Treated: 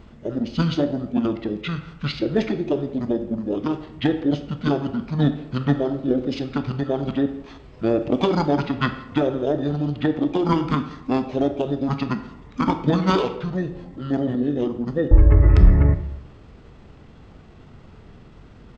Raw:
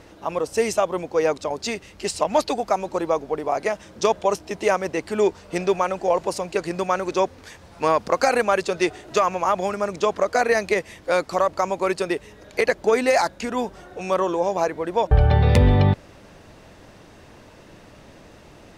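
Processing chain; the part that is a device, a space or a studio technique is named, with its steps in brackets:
monster voice (pitch shifter −5.5 semitones; formants moved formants −5.5 semitones; low-shelf EQ 220 Hz +6 dB; convolution reverb RT60 0.80 s, pre-delay 19 ms, DRR 8.5 dB)
level −2.5 dB

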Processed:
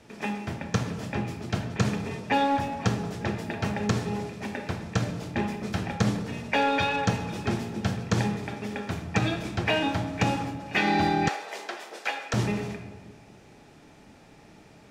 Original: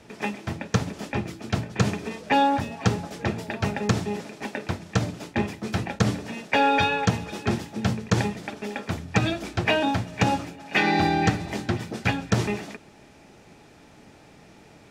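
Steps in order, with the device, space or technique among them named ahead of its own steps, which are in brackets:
saturated reverb return (on a send at −4 dB: convolution reverb RT60 1.3 s, pre-delay 16 ms + soft clipping −20 dBFS, distortion −12 dB)
0:11.28–0:12.34: on the sum: high-pass filter 470 Hz 24 dB per octave
level −3.5 dB

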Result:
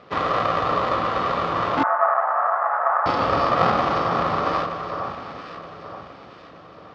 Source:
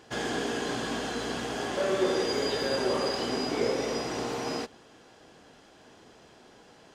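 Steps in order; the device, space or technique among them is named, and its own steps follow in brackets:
low-shelf EQ 360 Hz +9.5 dB
ring modulator pedal into a guitar cabinet (ring modulator with a square carrier 300 Hz; loudspeaker in its box 99–4,300 Hz, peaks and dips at 300 Hz +9 dB, 500 Hz +4 dB, 1,200 Hz +10 dB)
delay that swaps between a low-pass and a high-pass 462 ms, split 1,500 Hz, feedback 65%, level −6.5 dB
dynamic equaliser 1,100 Hz, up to +6 dB, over −42 dBFS, Q 1.6
0:01.83–0:03.06: Chebyshev band-pass filter 630–1,700 Hz, order 3

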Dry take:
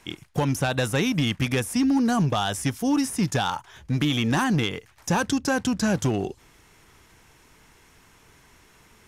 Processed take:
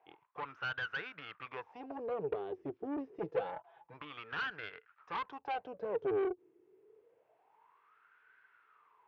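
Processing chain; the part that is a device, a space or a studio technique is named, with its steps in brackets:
wah-wah guitar rig (LFO wah 0.27 Hz 350–1,500 Hz, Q 11; tube saturation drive 39 dB, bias 0.65; loudspeaker in its box 85–3,900 Hz, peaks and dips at 230 Hz −10 dB, 440 Hz +8 dB, 2,600 Hz +4 dB)
0:03.13–0:03.94: comb filter 6 ms, depth 77%
level +6 dB

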